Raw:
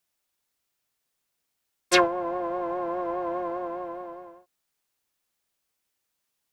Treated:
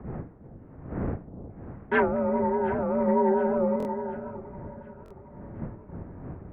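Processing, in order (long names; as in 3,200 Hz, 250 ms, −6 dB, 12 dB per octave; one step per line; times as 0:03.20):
rippled gain that drifts along the octave scale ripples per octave 1.1, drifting −1.4 Hz, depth 11 dB
wind on the microphone 160 Hz −31 dBFS
downward expander −48 dBFS
in parallel at +2 dB: upward compression, threshold −28 dBFS
on the sum: hard clipping −12.5 dBFS, distortion −9 dB
delay that swaps between a low-pass and a high-pass 362 ms, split 1,000 Hz, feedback 69%, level −12 dB
single-sideband voice off tune −130 Hz 230–2,200 Hz
0:03.07–0:03.76: comb filter 5.2 ms, depth 65%
buffer that repeats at 0:03.78/0:05.04, samples 1,024, times 2
wow of a warped record 78 rpm, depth 100 cents
level −5 dB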